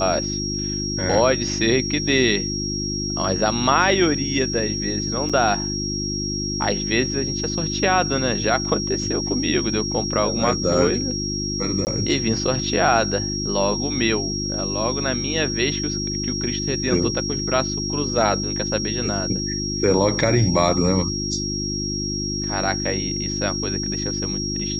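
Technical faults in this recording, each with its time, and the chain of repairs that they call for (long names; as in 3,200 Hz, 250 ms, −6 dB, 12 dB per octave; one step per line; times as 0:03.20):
mains hum 50 Hz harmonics 7 −28 dBFS
whistle 5,600 Hz −26 dBFS
0:05.29–0:05.30: drop-out 5.9 ms
0:11.85–0:11.87: drop-out 19 ms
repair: hum removal 50 Hz, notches 7
notch filter 5,600 Hz, Q 30
repair the gap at 0:05.29, 5.9 ms
repair the gap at 0:11.85, 19 ms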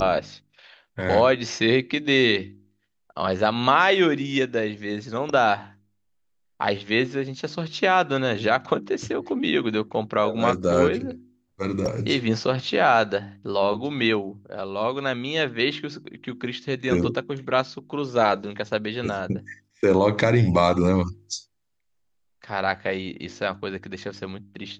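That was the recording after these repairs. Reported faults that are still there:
none of them is left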